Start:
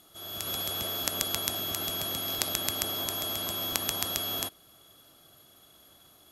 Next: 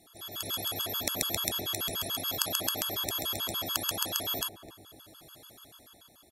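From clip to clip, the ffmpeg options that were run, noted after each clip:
-filter_complex "[0:a]dynaudnorm=f=120:g=13:m=8dB,asplit=2[a][b];[b]adelay=258,lowpass=f=830:p=1,volume=-10dB,asplit=2[c][d];[d]adelay=258,lowpass=f=830:p=1,volume=0.55,asplit=2[e][f];[f]adelay=258,lowpass=f=830:p=1,volume=0.55,asplit=2[g][h];[h]adelay=258,lowpass=f=830:p=1,volume=0.55,asplit=2[i][j];[j]adelay=258,lowpass=f=830:p=1,volume=0.55,asplit=2[k][l];[l]adelay=258,lowpass=f=830:p=1,volume=0.55[m];[a][c][e][g][i][k][m]amix=inputs=7:normalize=0,afftfilt=real='re*gt(sin(2*PI*6.9*pts/sr)*(1-2*mod(floor(b*sr/1024/870),2)),0)':imag='im*gt(sin(2*PI*6.9*pts/sr)*(1-2*mod(floor(b*sr/1024/870),2)),0)':win_size=1024:overlap=0.75,volume=2dB"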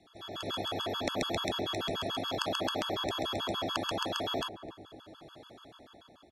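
-filter_complex "[0:a]lowpass=3.6k,acrossover=split=180|1300[a][b][c];[b]dynaudnorm=f=130:g=3:m=6dB[d];[a][d][c]amix=inputs=3:normalize=0"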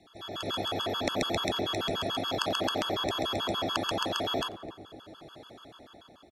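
-filter_complex "[0:a]asplit=3[a][b][c];[b]adelay=89,afreqshift=80,volume=-24dB[d];[c]adelay=178,afreqshift=160,volume=-32.9dB[e];[a][d][e]amix=inputs=3:normalize=0,volume=3dB"

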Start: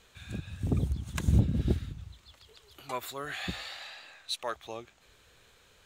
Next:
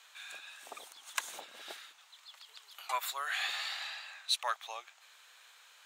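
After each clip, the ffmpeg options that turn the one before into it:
-af "highpass=f=790:w=0.5412,highpass=f=790:w=1.3066,volume=3.5dB"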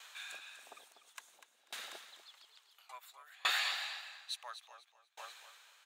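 -af "aecho=1:1:245|490|735|980|1225:0.473|0.185|0.072|0.0281|0.0109,aeval=exprs='val(0)*pow(10,-31*if(lt(mod(0.58*n/s,1),2*abs(0.58)/1000),1-mod(0.58*n/s,1)/(2*abs(0.58)/1000),(mod(0.58*n/s,1)-2*abs(0.58)/1000)/(1-2*abs(0.58)/1000))/20)':c=same,volume=5dB"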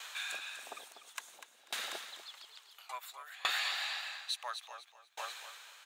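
-af "acompressor=threshold=-43dB:ratio=2.5,volume=8dB"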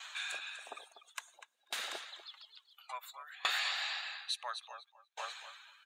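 -af "afftdn=nr=19:nf=-55"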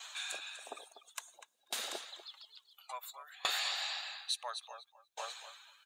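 -af "equalizer=f=1.8k:t=o:w=2.2:g=-10.5,volume=6dB"

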